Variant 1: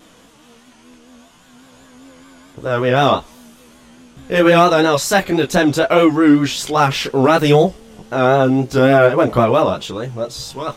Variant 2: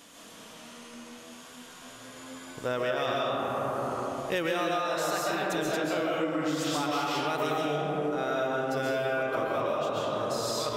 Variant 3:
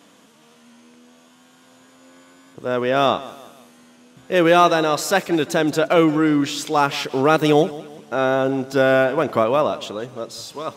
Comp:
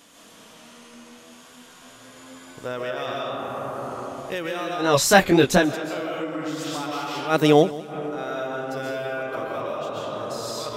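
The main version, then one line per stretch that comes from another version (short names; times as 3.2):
2
4.88–5.63 from 1, crossfade 0.24 s
7.33–7.9 from 3, crossfade 0.10 s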